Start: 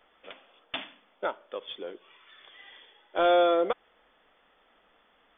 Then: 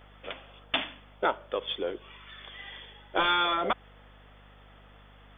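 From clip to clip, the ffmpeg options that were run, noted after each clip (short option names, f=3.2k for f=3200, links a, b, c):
-af "aeval=exprs='val(0)+0.000891*(sin(2*PI*50*n/s)+sin(2*PI*2*50*n/s)/2+sin(2*PI*3*50*n/s)/3+sin(2*PI*4*50*n/s)/4+sin(2*PI*5*50*n/s)/5)':c=same,afftfilt=real='re*lt(hypot(re,im),0.251)':imag='im*lt(hypot(re,im),0.251)':win_size=1024:overlap=0.75,acontrast=70"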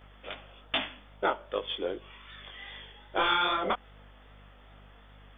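-af "flanger=delay=19.5:depth=4.6:speed=2.5,volume=2dB"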